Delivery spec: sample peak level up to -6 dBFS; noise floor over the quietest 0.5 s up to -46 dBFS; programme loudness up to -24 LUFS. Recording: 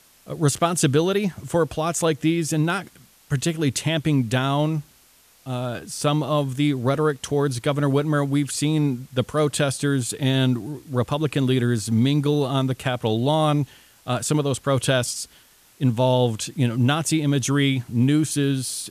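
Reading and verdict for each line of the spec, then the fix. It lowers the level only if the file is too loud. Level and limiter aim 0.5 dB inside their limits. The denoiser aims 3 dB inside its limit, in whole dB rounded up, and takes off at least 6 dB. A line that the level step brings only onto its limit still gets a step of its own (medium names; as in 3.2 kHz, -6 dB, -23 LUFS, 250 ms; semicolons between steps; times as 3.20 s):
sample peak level -6.5 dBFS: pass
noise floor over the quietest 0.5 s -55 dBFS: pass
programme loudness -22.5 LUFS: fail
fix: trim -2 dB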